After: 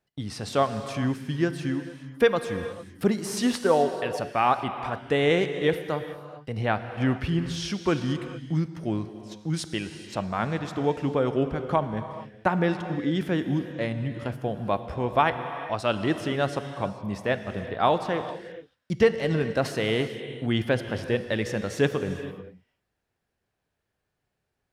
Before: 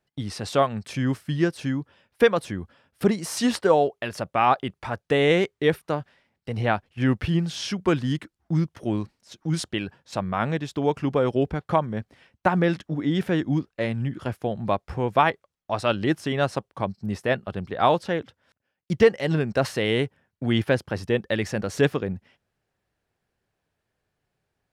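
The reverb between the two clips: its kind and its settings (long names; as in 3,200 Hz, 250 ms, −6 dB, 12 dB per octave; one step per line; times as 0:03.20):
reverb whose tail is shaped and stops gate 470 ms flat, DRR 8.5 dB
level −2.5 dB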